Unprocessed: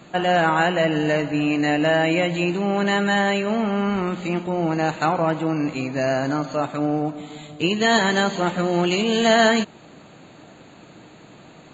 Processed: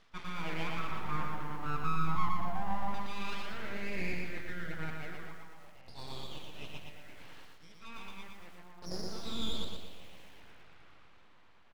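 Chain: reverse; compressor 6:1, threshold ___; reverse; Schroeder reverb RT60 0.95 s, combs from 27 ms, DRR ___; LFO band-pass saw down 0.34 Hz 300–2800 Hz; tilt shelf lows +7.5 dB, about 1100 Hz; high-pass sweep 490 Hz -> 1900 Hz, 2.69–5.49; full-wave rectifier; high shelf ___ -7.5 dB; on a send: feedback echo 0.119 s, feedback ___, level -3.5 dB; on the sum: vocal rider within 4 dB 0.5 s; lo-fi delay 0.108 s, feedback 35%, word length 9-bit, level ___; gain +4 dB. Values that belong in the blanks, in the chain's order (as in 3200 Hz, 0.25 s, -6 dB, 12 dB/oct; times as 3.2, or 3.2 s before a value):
-35 dBFS, 15 dB, 4800 Hz, 41%, -14 dB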